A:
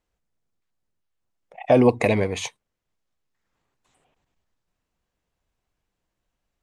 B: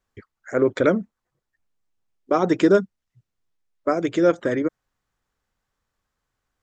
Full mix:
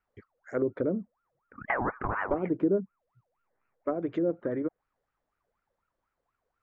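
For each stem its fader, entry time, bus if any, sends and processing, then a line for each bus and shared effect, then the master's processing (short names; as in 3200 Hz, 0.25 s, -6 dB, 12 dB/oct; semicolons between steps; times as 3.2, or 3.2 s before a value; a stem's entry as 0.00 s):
-1.5 dB, 0.00 s, no send, steep low-pass 1500 Hz 72 dB/oct; compressor 4:1, threshold -24 dBFS, peak gain reduction 11.5 dB; ring modulator with a swept carrier 940 Hz, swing 50%, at 4.1 Hz
-8.0 dB, 0.00 s, no send, treble ducked by the level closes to 470 Hz, closed at -15.5 dBFS; high shelf 5100 Hz -12 dB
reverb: off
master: dry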